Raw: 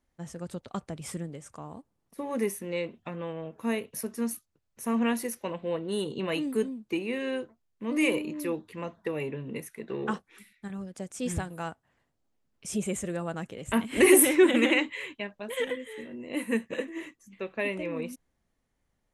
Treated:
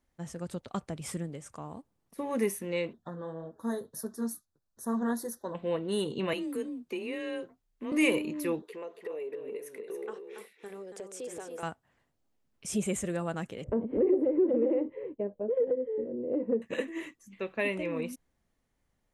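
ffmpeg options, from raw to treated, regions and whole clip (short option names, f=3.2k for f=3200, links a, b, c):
-filter_complex "[0:a]asettb=1/sr,asplit=3[a][b][c];[a]atrim=end=2.934[d];[b]atrim=start=2.93:end=5.55,asetpts=PTS-STARTPTS,afade=t=in:d=0.004:c=qsin,afade=t=out:st=2.616:d=0.004:c=qsin,flanger=delay=2.5:depth=6.2:regen=-44:speed=1.6:shape=triangular,asuperstop=centerf=2500:order=8:qfactor=1.4[e];[c]atrim=start=5.546[f];[d][e]acrossfade=d=0.004:c1=hsin:c2=qsin[g];[g][f]acrossfade=d=0.004:c1=qsin:c2=hsin,asettb=1/sr,asplit=3[h][i][j];[h]atrim=end=6.334[k];[i]atrim=start=6.33:end=7.92,asetpts=PTS-STARTPTS,afade=t=in:d=0.004:c=qsin,afade=t=out:st=1.586:d=0.004:c=qsin,acompressor=threshold=-35dB:ratio=2:attack=3.2:release=140:knee=1:detection=peak,afreqshift=28[l];[j]atrim=start=7.916[m];[k][l]acrossfade=d=0.004:c1=hsin:c2=qsin[n];[n][m]acrossfade=d=0.004:c1=qsin:c2=hsin,asettb=1/sr,asplit=3[o][p][q];[o]atrim=end=8.624[r];[p]atrim=start=8.62:end=11.63,asetpts=PTS-STARTPTS,afade=t=in:d=0.004:c=qsin,afade=t=out:st=3.006:d=0.004:c=qsin,highpass=f=430:t=q:w=5.3,acompressor=threshold=-41dB:ratio=3:attack=3.2:release=140:knee=1:detection=peak,aecho=1:1:280:0.447,atrim=end_sample=132741[s];[q]atrim=start=11.626[t];[r][s]acrossfade=d=0.004:c1=hsin:c2=qsin[u];[u][t]acrossfade=d=0.004:c1=qsin:c2=hsin,asettb=1/sr,asplit=3[v][w][x];[v]atrim=end=13.644[y];[w]atrim=start=13.64:end=16.62,asetpts=PTS-STARTPTS,afade=t=in:d=0.004:c=qsin,afade=t=out:st=2.976:d=0.004:c=qsin,lowpass=f=490:t=q:w=4.3,acompressor=threshold=-26dB:ratio=3:attack=3.2:release=140:knee=1:detection=peak[z];[x]atrim=start=16.616[aa];[y][z]acrossfade=d=0.004:c1=hsin:c2=qsin[ab];[ab][aa]acrossfade=d=0.004:c1=qsin:c2=hsin"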